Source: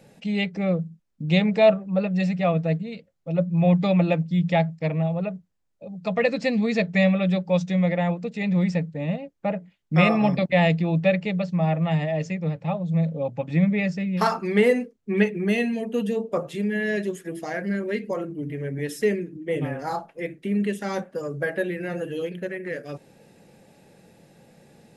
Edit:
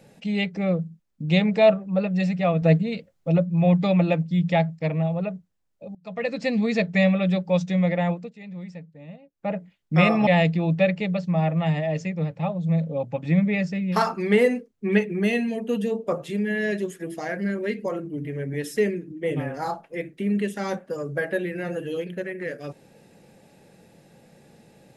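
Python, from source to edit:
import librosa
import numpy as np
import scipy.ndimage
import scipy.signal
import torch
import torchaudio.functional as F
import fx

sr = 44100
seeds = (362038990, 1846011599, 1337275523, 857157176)

y = fx.edit(x, sr, fx.clip_gain(start_s=2.62, length_s=0.76, db=6.5),
    fx.fade_in_from(start_s=5.95, length_s=0.62, floor_db=-22.0),
    fx.fade_down_up(start_s=8.11, length_s=1.43, db=-15.0, fade_s=0.23),
    fx.cut(start_s=10.27, length_s=0.25), tone=tone)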